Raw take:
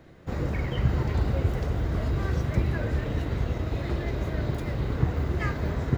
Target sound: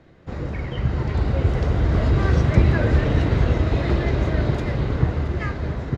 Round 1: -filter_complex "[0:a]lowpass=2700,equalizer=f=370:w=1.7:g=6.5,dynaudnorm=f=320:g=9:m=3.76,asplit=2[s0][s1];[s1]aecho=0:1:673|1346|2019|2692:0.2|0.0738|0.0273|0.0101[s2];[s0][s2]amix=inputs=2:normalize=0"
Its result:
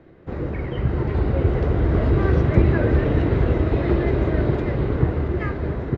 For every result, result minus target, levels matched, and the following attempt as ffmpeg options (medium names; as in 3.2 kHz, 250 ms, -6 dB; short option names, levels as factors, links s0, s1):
8 kHz band -13.5 dB; 500 Hz band +3.5 dB
-filter_complex "[0:a]lowpass=6000,equalizer=f=370:w=1.7:g=6.5,dynaudnorm=f=320:g=9:m=3.76,asplit=2[s0][s1];[s1]aecho=0:1:673|1346|2019|2692:0.2|0.0738|0.0273|0.0101[s2];[s0][s2]amix=inputs=2:normalize=0"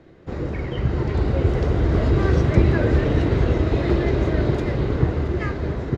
500 Hz band +3.0 dB
-filter_complex "[0:a]lowpass=6000,dynaudnorm=f=320:g=9:m=3.76,asplit=2[s0][s1];[s1]aecho=0:1:673|1346|2019|2692:0.2|0.0738|0.0273|0.0101[s2];[s0][s2]amix=inputs=2:normalize=0"